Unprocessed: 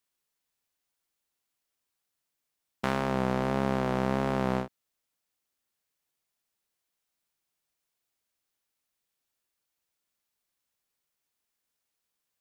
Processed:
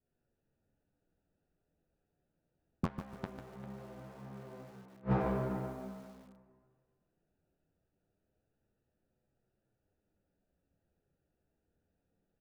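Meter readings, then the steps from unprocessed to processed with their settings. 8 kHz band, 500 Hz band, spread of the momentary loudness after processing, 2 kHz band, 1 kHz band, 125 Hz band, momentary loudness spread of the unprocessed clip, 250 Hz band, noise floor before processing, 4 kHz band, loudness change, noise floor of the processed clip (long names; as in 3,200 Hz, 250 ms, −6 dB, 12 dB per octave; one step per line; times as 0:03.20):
below −10 dB, −10.0 dB, 18 LU, −14.5 dB, −11.0 dB, −5.5 dB, 5 LU, −8.5 dB, −84 dBFS, −17.5 dB, −10.5 dB, −84 dBFS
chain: adaptive Wiener filter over 41 samples
dense smooth reverb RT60 1.9 s, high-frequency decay 0.85×, DRR −7.5 dB
gate with flip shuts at −22 dBFS, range −39 dB
bass and treble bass +5 dB, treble −7 dB
on a send: repeating echo 399 ms, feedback 17%, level −13.5 dB
on the sum: flanger 0.22 Hz, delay 7.9 ms, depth 5.1 ms, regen −44%
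high-shelf EQ 3,400 Hz −7 dB
notch filter 1,100 Hz, Q 15
hard clipping −32.5 dBFS, distortion −9 dB
feedback echo at a low word length 147 ms, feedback 35%, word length 11 bits, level −9 dB
level +11 dB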